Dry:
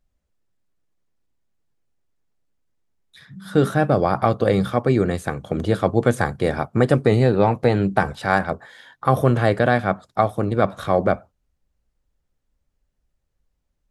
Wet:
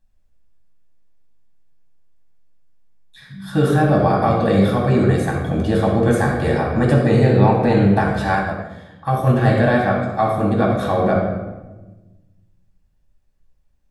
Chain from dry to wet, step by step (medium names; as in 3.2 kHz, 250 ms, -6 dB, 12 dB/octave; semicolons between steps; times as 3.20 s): in parallel at +1 dB: peak limiter -12 dBFS, peak gain reduction 10 dB; on the sum: reverberation RT60 1.2 s, pre-delay 4 ms, DRR -2 dB; 8.35–9.45 s: upward expansion 1.5:1, over -19 dBFS; trim -9 dB